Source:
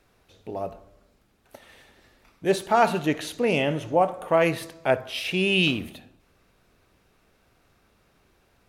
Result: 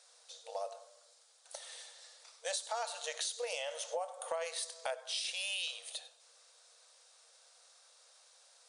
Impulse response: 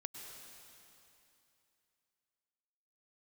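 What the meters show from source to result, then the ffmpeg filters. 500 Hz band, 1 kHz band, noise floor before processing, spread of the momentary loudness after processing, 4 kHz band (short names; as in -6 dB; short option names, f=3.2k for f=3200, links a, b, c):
-17.0 dB, -17.0 dB, -64 dBFS, 16 LU, -8.0 dB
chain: -filter_complex "[1:a]atrim=start_sample=2205,atrim=end_sample=4410[a];[0:a][a]afir=irnorm=-1:irlink=0,afftfilt=real='re*between(b*sr/4096,460,10000)':imag='im*between(b*sr/4096,460,10000)':win_size=4096:overlap=0.75,aexciter=amount=7.2:drive=2.9:freq=3.6k,acompressor=threshold=-37dB:ratio=6,volume=1dB"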